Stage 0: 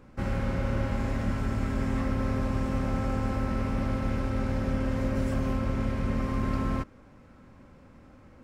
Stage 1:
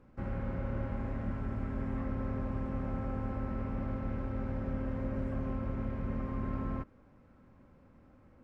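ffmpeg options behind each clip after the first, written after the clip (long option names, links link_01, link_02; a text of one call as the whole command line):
ffmpeg -i in.wav -filter_complex "[0:a]acrossover=split=2800[link_01][link_02];[link_02]acompressor=threshold=-60dB:ratio=4:attack=1:release=60[link_03];[link_01][link_03]amix=inputs=2:normalize=0,highshelf=frequency=2900:gain=-11,volume=-7dB" out.wav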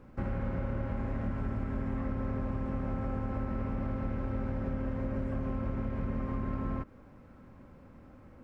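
ffmpeg -i in.wav -af "acompressor=threshold=-36dB:ratio=6,volume=6.5dB" out.wav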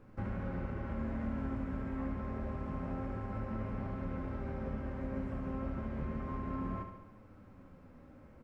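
ffmpeg -i in.wav -af "flanger=delay=9.1:depth=6.9:regen=46:speed=0.28:shape=triangular,aecho=1:1:71|142|213|284|355|426|497|568:0.447|0.264|0.155|0.0917|0.0541|0.0319|0.0188|0.0111" out.wav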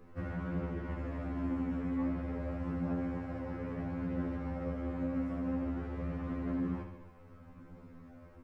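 ffmpeg -i in.wav -af "afftfilt=real='re*2*eq(mod(b,4),0)':imag='im*2*eq(mod(b,4),0)':win_size=2048:overlap=0.75,volume=4dB" out.wav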